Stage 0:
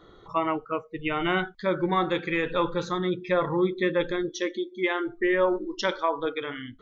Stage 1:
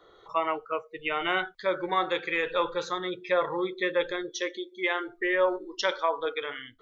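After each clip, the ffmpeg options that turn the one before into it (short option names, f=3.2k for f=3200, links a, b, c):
-filter_complex "[0:a]lowshelf=f=340:t=q:w=1.5:g=-10,acrossover=split=120|1400[a][b][c];[c]dynaudnorm=f=110:g=3:m=4dB[d];[a][b][d]amix=inputs=3:normalize=0,volume=-3dB"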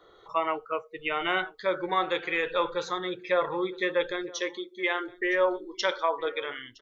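-af "aecho=1:1:964:0.0794"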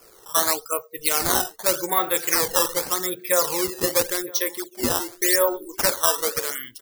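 -af "acrusher=samples=11:mix=1:aa=0.000001:lfo=1:lforange=17.6:lforate=0.86,aexciter=amount=2.8:drive=7.4:freq=4.5k,volume=3dB"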